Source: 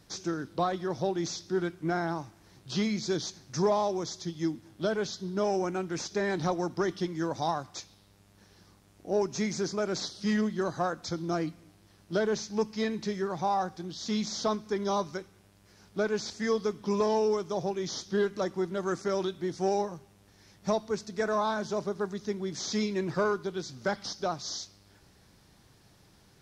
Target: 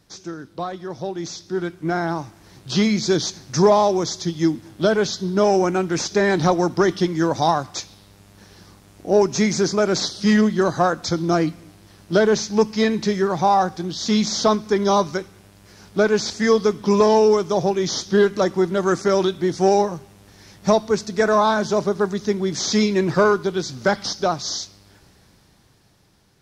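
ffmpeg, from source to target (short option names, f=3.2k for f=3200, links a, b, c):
-af "dynaudnorm=f=360:g=11:m=12dB"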